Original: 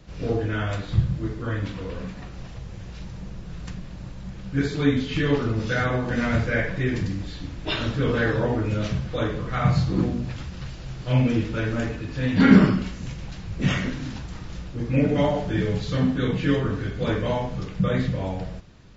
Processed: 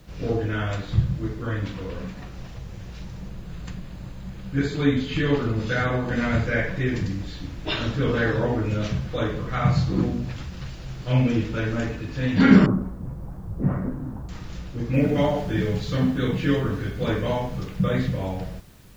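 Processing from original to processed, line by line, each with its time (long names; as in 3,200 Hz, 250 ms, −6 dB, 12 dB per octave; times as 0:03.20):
0:03.28–0:06.46: notch filter 5,600 Hz, Q 7.4
0:12.66–0:14.29: inverse Chebyshev low-pass filter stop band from 5,000 Hz, stop band 70 dB
0:14.94: noise floor change −68 dB −59 dB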